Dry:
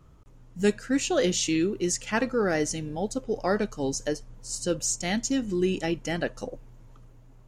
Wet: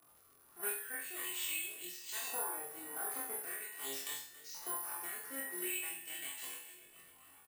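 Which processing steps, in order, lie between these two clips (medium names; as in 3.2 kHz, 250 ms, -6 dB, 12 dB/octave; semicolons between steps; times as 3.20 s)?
comb filter that takes the minimum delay 2.7 ms; LFO band-pass saw up 0.44 Hz 900–4900 Hz; feedback comb 86 Hz, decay 0.41 s, harmonics all, mix 80%; feedback delay 277 ms, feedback 52%, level -19 dB; compression 6:1, threshold -56 dBFS, peak gain reduction 16 dB; careless resampling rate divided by 4×, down filtered, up zero stuff; rotary cabinet horn 1.2 Hz; chorus voices 4, 0.39 Hz, delay 29 ms, depth 1.2 ms; crackle 91 per s -70 dBFS; flutter echo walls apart 3.8 m, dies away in 0.47 s; trim +15.5 dB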